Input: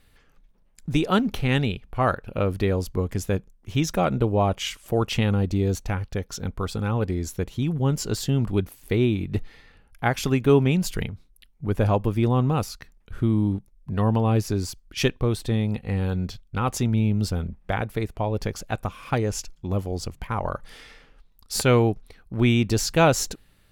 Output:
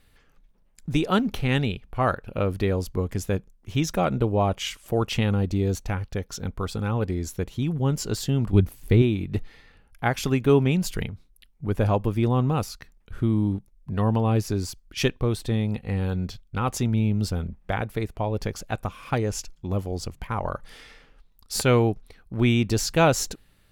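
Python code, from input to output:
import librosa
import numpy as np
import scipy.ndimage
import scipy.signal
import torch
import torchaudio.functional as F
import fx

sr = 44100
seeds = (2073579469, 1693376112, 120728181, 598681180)

y = fx.low_shelf(x, sr, hz=200.0, db=11.5, at=(8.53, 9.02))
y = y * librosa.db_to_amplitude(-1.0)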